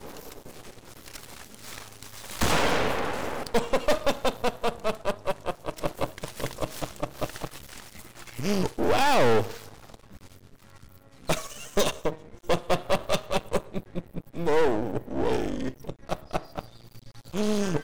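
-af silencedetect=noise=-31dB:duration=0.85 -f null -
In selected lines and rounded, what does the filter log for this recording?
silence_start: 9.94
silence_end: 11.29 | silence_duration: 1.35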